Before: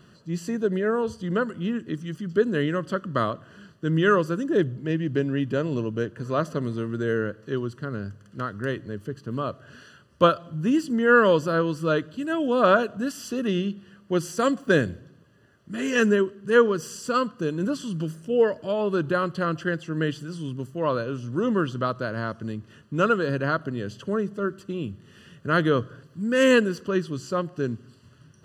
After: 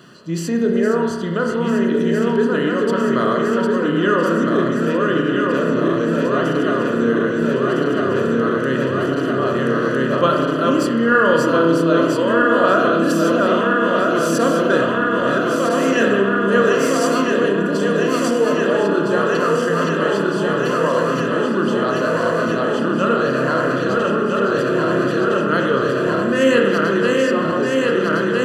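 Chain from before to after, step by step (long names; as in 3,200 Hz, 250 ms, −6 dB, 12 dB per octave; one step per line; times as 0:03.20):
feedback delay that plays each chunk backwards 654 ms, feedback 84%, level −4 dB
0:17.07–0:18.51: parametric band 1,300 Hz −7.5 dB 0.28 octaves
in parallel at +1 dB: compressor whose output falls as the input rises −29 dBFS, ratio −1
on the sum: high-pass filter 210 Hz 12 dB per octave
spring reverb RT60 1.5 s, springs 30 ms, chirp 35 ms, DRR 1.5 dB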